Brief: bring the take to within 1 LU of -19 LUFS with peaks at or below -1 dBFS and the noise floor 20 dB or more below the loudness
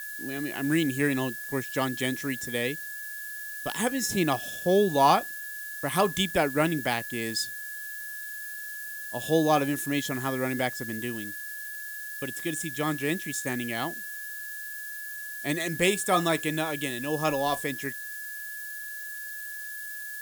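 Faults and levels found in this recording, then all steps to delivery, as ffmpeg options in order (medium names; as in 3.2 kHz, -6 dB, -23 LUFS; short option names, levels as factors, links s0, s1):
steady tone 1.7 kHz; tone level -37 dBFS; noise floor -38 dBFS; noise floor target -49 dBFS; loudness -29.0 LUFS; peak level -8.5 dBFS; loudness target -19.0 LUFS
-> -af "bandreject=f=1700:w=30"
-af "afftdn=nr=11:nf=-38"
-af "volume=3.16,alimiter=limit=0.891:level=0:latency=1"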